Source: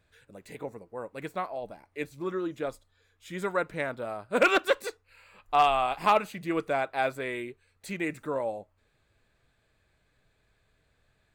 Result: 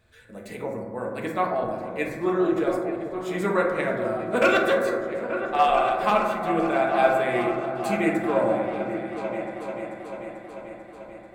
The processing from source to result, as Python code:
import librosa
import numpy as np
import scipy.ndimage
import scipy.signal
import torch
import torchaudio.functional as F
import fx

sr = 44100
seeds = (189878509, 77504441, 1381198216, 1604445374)

p1 = fx.rider(x, sr, range_db=4, speed_s=2.0)
p2 = p1 + fx.echo_opening(p1, sr, ms=441, hz=400, octaves=2, feedback_pct=70, wet_db=-6, dry=0)
y = fx.rev_fdn(p2, sr, rt60_s=1.5, lf_ratio=1.1, hf_ratio=0.25, size_ms=27.0, drr_db=-1.5)